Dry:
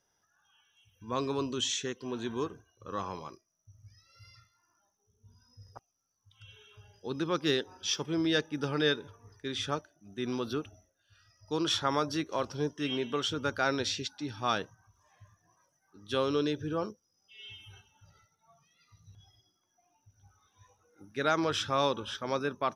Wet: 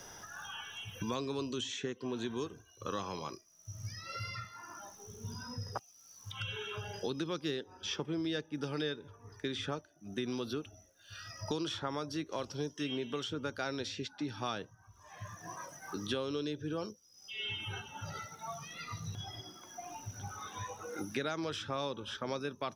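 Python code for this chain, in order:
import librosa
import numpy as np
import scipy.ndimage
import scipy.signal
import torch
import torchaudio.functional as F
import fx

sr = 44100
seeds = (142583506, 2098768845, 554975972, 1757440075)

y = fx.dynamic_eq(x, sr, hz=1200.0, q=0.8, threshold_db=-42.0, ratio=4.0, max_db=-4)
y = fx.band_squash(y, sr, depth_pct=100)
y = y * librosa.db_to_amplitude(-4.0)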